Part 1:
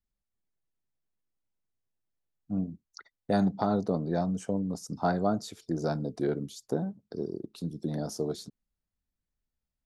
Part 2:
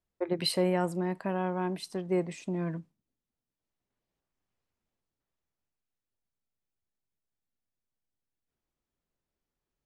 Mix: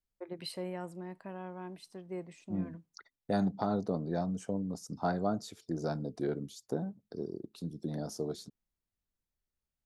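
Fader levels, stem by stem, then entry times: -4.5 dB, -12.0 dB; 0.00 s, 0.00 s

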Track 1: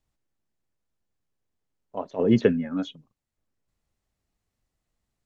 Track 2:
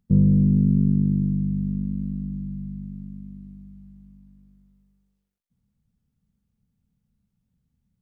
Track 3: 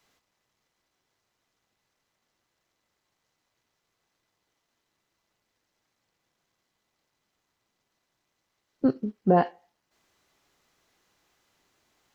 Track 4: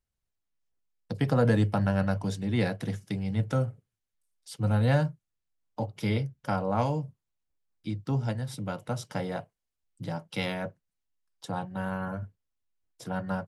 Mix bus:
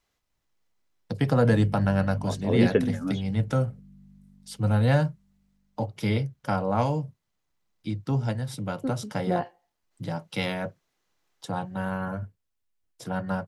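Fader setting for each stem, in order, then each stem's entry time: -2.5 dB, -19.5 dB, -8.0 dB, +2.5 dB; 0.30 s, 1.40 s, 0.00 s, 0.00 s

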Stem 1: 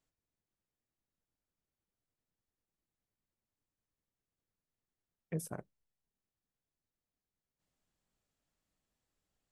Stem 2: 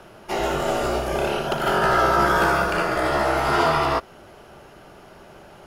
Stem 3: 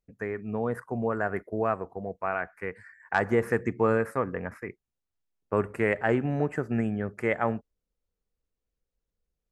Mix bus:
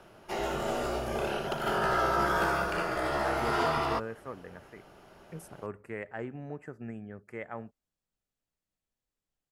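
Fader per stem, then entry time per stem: -6.0 dB, -9.0 dB, -13.5 dB; 0.00 s, 0.00 s, 0.10 s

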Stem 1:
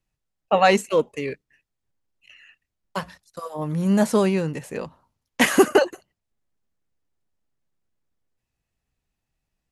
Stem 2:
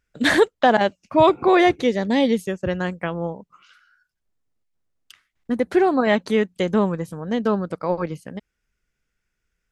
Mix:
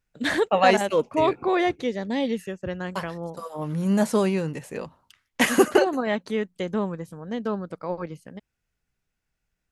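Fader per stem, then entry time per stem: -2.5 dB, -7.0 dB; 0.00 s, 0.00 s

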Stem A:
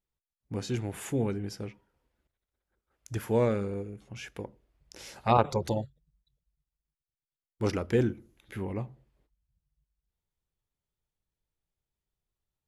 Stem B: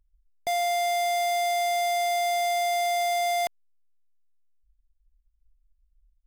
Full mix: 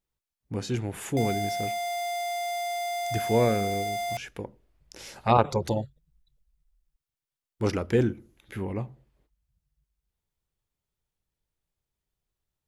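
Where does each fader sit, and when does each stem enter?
+2.5 dB, -5.5 dB; 0.00 s, 0.70 s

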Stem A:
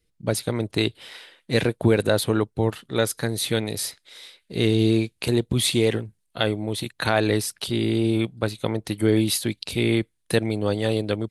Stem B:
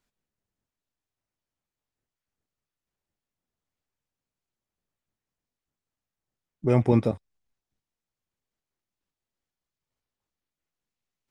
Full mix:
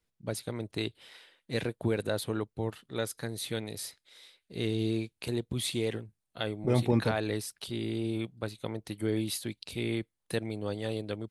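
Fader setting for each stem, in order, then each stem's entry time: -11.0 dB, -5.5 dB; 0.00 s, 0.00 s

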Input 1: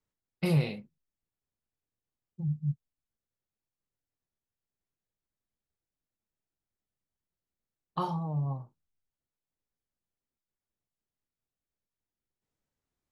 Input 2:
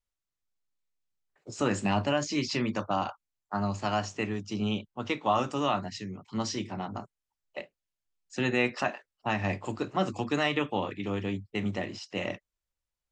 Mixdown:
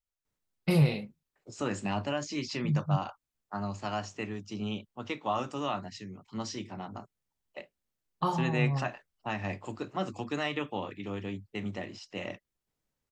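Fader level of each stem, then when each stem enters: +2.5 dB, -5.0 dB; 0.25 s, 0.00 s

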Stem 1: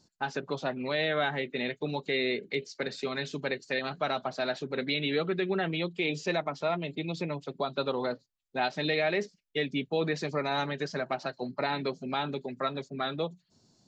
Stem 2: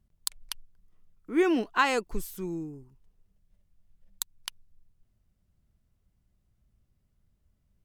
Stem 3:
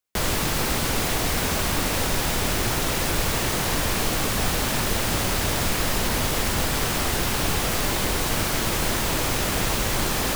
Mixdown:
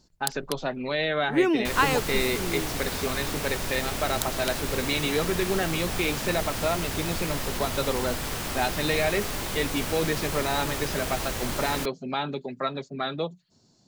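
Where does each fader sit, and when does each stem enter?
+2.5 dB, +1.5 dB, -7.5 dB; 0.00 s, 0.00 s, 1.50 s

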